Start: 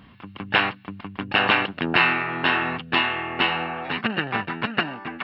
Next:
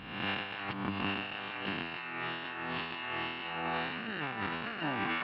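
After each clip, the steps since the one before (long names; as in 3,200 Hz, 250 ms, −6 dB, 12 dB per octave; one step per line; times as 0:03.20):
peak hold with a rise ahead of every peak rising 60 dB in 0.92 s
brickwall limiter −11 dBFS, peak gain reduction 10 dB
compressor whose output falls as the input rises −30 dBFS, ratio −1
level −7.5 dB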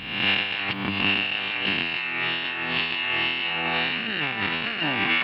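high shelf with overshoot 1,800 Hz +7 dB, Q 1.5
level +7 dB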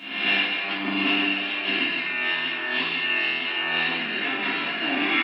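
high-pass filter 200 Hz 24 dB per octave
comb filter 2.9 ms, depth 34%
rectangular room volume 240 cubic metres, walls mixed, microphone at 2.7 metres
level −8.5 dB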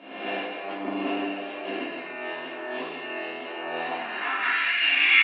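band-pass filter sweep 530 Hz → 2,400 Hz, 0:03.76–0:04.84
level +7.5 dB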